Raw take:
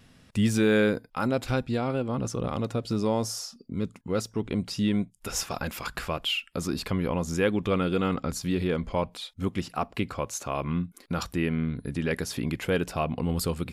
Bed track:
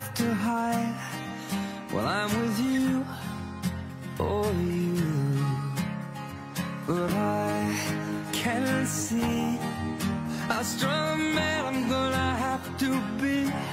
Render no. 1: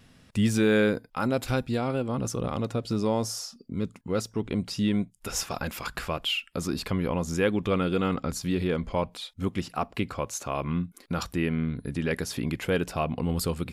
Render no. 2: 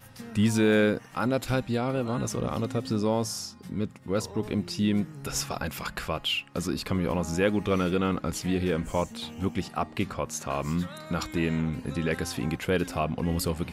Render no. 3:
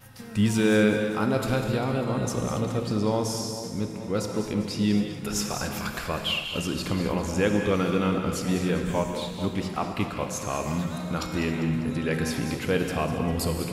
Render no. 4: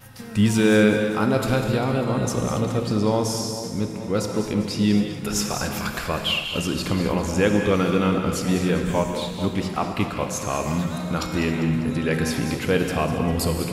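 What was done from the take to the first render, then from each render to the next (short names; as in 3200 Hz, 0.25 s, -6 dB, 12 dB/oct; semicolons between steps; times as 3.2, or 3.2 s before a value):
1.31–2.47 high shelf 10000 Hz +10.5 dB
add bed track -15.5 dB
on a send: split-band echo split 1000 Hz, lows 0.439 s, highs 0.199 s, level -11 dB; on the sum: non-linear reverb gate 0.3 s flat, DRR 4.5 dB
gain +4 dB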